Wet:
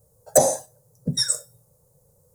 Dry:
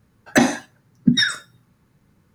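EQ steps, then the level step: EQ curve 150 Hz 0 dB, 220 Hz -16 dB, 330 Hz -14 dB, 500 Hz +13 dB, 1600 Hz -18 dB, 2700 Hz -21 dB, 7900 Hz +14 dB; -1.5 dB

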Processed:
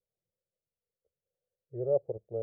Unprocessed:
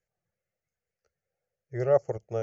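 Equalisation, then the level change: ladder low-pass 620 Hz, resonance 40%; 0.0 dB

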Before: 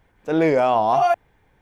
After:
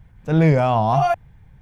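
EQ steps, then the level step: resonant low shelf 220 Hz +14 dB, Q 1.5; 0.0 dB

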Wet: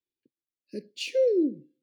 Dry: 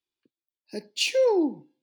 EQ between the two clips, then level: Chebyshev band-stop 560–1600 Hz, order 4; bell 1400 Hz -7 dB 0.93 oct; high shelf 2000 Hz -11 dB; 0.0 dB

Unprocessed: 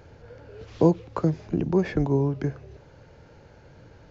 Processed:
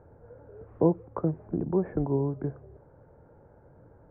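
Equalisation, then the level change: Bessel low-pass 860 Hz, order 6; low shelf 370 Hz -6 dB; 0.0 dB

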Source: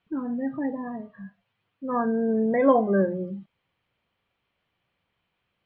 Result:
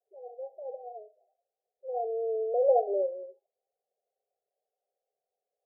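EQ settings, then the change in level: brick-wall FIR high-pass 390 Hz; Chebyshev low-pass 790 Hz, order 10; -2.0 dB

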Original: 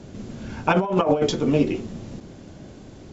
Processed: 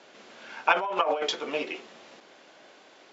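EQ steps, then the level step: HPF 600 Hz 12 dB/oct; LPF 3000 Hz 12 dB/oct; tilt +3 dB/oct; 0.0 dB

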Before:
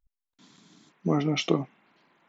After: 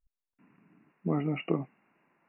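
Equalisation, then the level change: brick-wall FIR low-pass 2900 Hz; low shelf 340 Hz +3.5 dB; -6.5 dB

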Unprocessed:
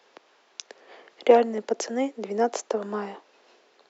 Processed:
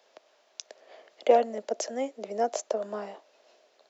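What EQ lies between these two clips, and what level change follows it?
bell 620 Hz +14 dB 0.39 oct; high shelf 3400 Hz +9.5 dB; -9.0 dB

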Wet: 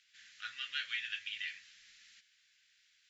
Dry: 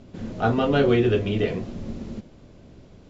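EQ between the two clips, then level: elliptic high-pass 1700 Hz, stop band 50 dB; -3.5 dB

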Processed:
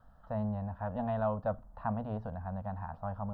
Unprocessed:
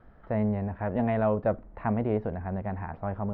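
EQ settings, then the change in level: high shelf 2600 Hz +9.5 dB; notches 60/120 Hz; fixed phaser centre 910 Hz, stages 4; -4.0 dB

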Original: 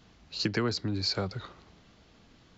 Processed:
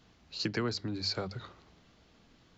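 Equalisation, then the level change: notches 50/100/150/200 Hz; -3.5 dB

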